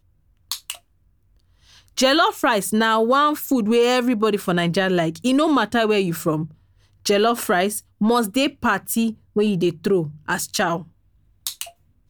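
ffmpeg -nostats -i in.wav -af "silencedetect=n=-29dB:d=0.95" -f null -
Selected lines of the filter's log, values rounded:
silence_start: 0.75
silence_end: 1.98 | silence_duration: 1.22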